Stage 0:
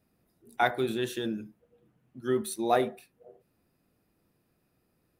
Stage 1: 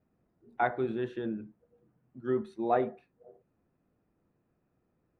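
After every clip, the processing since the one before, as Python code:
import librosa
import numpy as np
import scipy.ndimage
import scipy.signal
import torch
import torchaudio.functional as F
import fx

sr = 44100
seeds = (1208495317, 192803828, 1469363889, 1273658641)

y = scipy.signal.sosfilt(scipy.signal.butter(2, 1600.0, 'lowpass', fs=sr, output='sos'), x)
y = y * librosa.db_to_amplitude(-2.0)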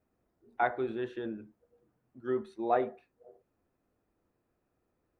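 y = fx.peak_eq(x, sr, hz=160.0, db=-9.0, octaves=1.2)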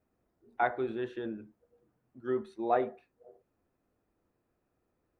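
y = x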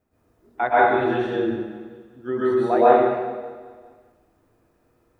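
y = fx.echo_feedback(x, sr, ms=200, feedback_pct=54, wet_db=-18.0)
y = fx.rev_plate(y, sr, seeds[0], rt60_s=1.2, hf_ratio=0.85, predelay_ms=105, drr_db=-9.5)
y = y * librosa.db_to_amplitude(4.5)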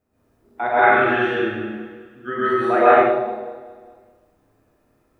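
y = fx.spec_box(x, sr, start_s=0.83, length_s=2.19, low_hz=1100.0, high_hz=3300.0, gain_db=10)
y = fx.rev_schroeder(y, sr, rt60_s=0.46, comb_ms=29, drr_db=-0.5)
y = y * librosa.db_to_amplitude(-2.0)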